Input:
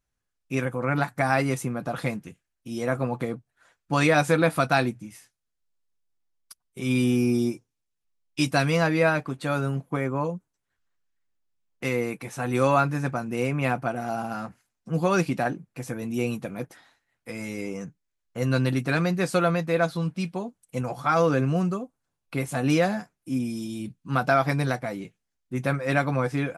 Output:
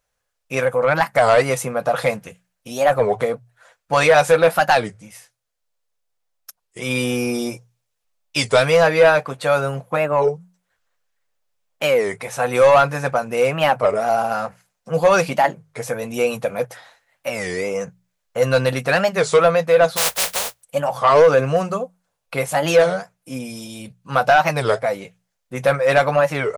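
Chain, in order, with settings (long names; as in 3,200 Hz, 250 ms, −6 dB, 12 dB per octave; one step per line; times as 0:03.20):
0:19.96–0:20.61: compressing power law on the bin magnitudes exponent 0.13
low shelf with overshoot 410 Hz −7 dB, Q 3
mains-hum notches 60/120/180 Hz
in parallel at +0.5 dB: speech leveller within 5 dB 2 s
on the sum: soft clipping −7.5 dBFS, distortion −15 dB
wow of a warped record 33 1/3 rpm, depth 250 cents
level +2 dB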